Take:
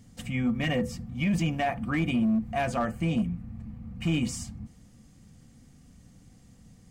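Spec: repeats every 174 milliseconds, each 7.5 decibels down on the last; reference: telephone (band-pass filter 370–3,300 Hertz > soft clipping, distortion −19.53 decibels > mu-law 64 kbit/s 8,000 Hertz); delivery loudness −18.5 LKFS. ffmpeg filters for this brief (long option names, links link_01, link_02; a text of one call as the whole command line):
ffmpeg -i in.wav -af "highpass=370,lowpass=3300,aecho=1:1:174|348|522|696|870:0.422|0.177|0.0744|0.0312|0.0131,asoftclip=threshold=-22dB,volume=15.5dB" -ar 8000 -c:a pcm_mulaw out.wav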